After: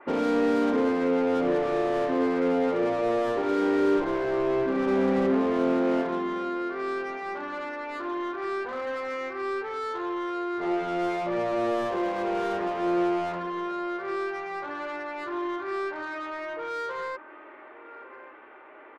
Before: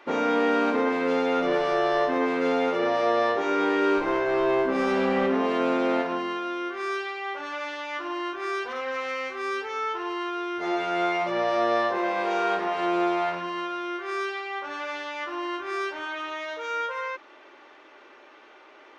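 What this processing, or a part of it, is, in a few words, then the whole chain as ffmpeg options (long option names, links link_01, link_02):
one-band saturation: -filter_complex "[0:a]lowpass=frequency=2200:width=0.5412,lowpass=frequency=2200:width=1.3066,asettb=1/sr,asplit=3[link_01][link_02][link_03];[link_01]atrim=end=4.044[link_04];[link_02]atrim=start=4.04:end=4.88,asetpts=PTS-STARTPTS,afade=type=in:duration=0.004:curve=qsin,afade=type=out:start_time=0.836:duration=0.004:curve=qsin,equalizer=frequency=580:width=0.44:gain=-3[link_05];[link_03]atrim=start=4.876[link_06];[link_04][link_05]acrossfade=duration=0.004:curve1=hsin:curve2=qsin[link_07];[link_07][link_06]acrossfade=duration=0.004:curve1=qsin:curve2=hsin,asplit=2[link_08][link_09];[link_09]adelay=1157,lowpass=frequency=2000:poles=1,volume=-18.5dB,asplit=2[link_10][link_11];[link_11]adelay=1157,lowpass=frequency=2000:poles=1,volume=0.36,asplit=2[link_12][link_13];[link_13]adelay=1157,lowpass=frequency=2000:poles=1,volume=0.36[link_14];[link_08][link_10][link_12][link_14]amix=inputs=4:normalize=0,acrossover=split=500|4300[link_15][link_16][link_17];[link_16]asoftclip=type=tanh:threshold=-34.5dB[link_18];[link_15][link_18][link_17]amix=inputs=3:normalize=0,adynamicequalizer=threshold=0.00355:dfrequency=2800:dqfactor=0.7:tfrequency=2800:tqfactor=0.7:attack=5:release=100:ratio=0.375:range=2.5:mode=cutabove:tftype=highshelf,volume=2.5dB"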